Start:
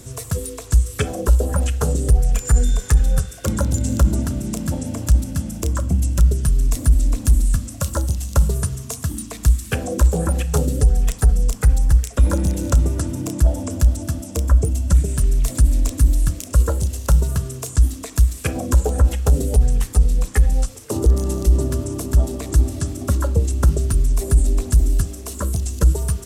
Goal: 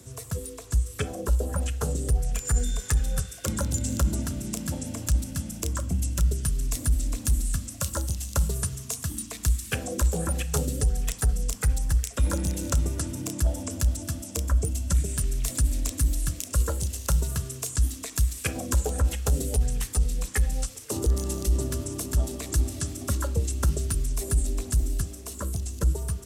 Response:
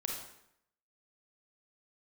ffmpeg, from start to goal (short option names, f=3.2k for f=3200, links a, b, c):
-filter_complex "[0:a]highpass=43,acrossover=split=170|1600[a][b][c];[c]dynaudnorm=f=660:g=7:m=8dB[d];[a][b][d]amix=inputs=3:normalize=0,volume=-8dB"